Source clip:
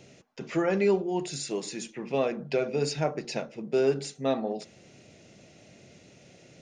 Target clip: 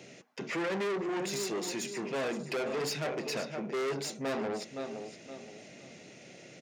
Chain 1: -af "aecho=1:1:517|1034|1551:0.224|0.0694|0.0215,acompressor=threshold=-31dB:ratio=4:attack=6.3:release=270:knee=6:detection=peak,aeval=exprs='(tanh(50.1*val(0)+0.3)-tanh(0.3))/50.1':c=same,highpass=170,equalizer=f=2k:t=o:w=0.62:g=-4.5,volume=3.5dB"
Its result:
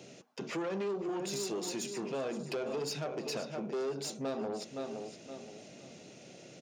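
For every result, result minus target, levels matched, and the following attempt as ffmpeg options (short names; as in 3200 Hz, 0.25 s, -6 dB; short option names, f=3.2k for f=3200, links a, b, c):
compressor: peak gain reduction +11 dB; 2000 Hz band -5.5 dB
-af "aecho=1:1:517|1034|1551:0.224|0.0694|0.0215,aeval=exprs='(tanh(50.1*val(0)+0.3)-tanh(0.3))/50.1':c=same,highpass=170,equalizer=f=2k:t=o:w=0.62:g=-4.5,volume=3.5dB"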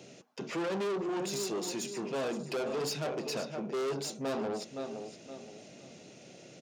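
2000 Hz band -4.5 dB
-af "aecho=1:1:517|1034|1551:0.224|0.0694|0.0215,aeval=exprs='(tanh(50.1*val(0)+0.3)-tanh(0.3))/50.1':c=same,highpass=170,equalizer=f=2k:t=o:w=0.62:g=4,volume=3.5dB"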